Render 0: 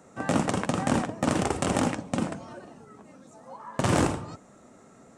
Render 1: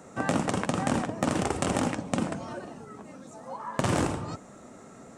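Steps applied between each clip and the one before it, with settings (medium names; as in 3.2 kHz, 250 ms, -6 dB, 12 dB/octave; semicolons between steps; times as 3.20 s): compression 2.5:1, threshold -31 dBFS, peak gain reduction 8.5 dB; trim +5 dB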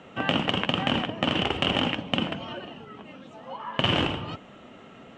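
resonant low-pass 3 kHz, resonance Q 9.5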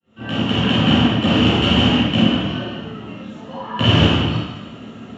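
fade-in on the opening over 0.67 s; reverberation RT60 1.1 s, pre-delay 3 ms, DRR -12 dB; trim -7.5 dB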